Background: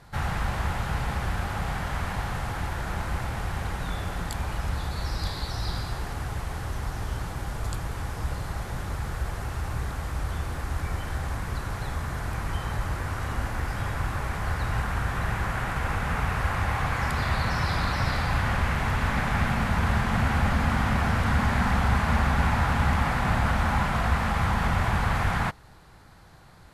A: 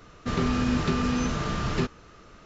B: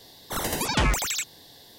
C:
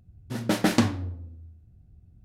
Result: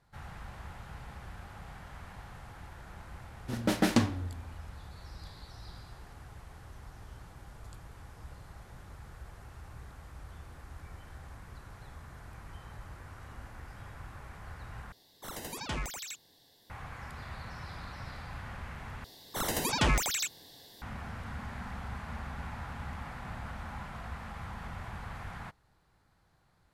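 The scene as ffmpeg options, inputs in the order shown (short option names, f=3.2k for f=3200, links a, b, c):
-filter_complex "[2:a]asplit=2[a][b];[0:a]volume=-17.5dB,asplit=3[c][d][e];[c]atrim=end=14.924[f];[a]atrim=end=1.78,asetpts=PTS-STARTPTS,volume=-13.5dB[g];[d]atrim=start=16.696:end=19.044[h];[b]atrim=end=1.78,asetpts=PTS-STARTPTS,volume=-4dB[i];[e]atrim=start=20.816[j];[3:a]atrim=end=2.24,asetpts=PTS-STARTPTS,volume=-4dB,afade=t=in:d=0.004:c=hsin,afade=t=out:st=2.236:d=0.004:c=hsin,adelay=3180[k];[f][g]acrossfade=d=0.004:c1=hsin:c2=hsin[l];[l][h]acrossfade=d=0.004:c1=hsin:c2=hsin[m];[m][i]acrossfade=d=0.004:c1=hsin:c2=hsin[n];[n][j]acrossfade=d=0.004:c1=hsin:c2=hsin[o];[o][k]amix=inputs=2:normalize=0"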